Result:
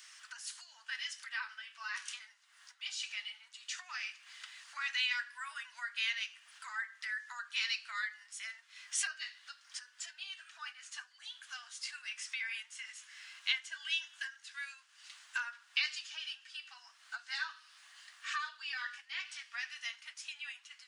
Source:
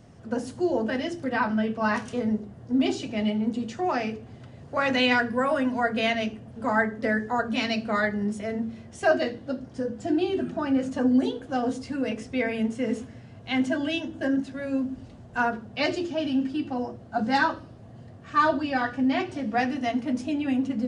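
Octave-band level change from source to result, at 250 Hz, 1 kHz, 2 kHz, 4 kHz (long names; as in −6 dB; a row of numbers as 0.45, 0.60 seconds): below −40 dB, −20.5 dB, −8.0 dB, −3.0 dB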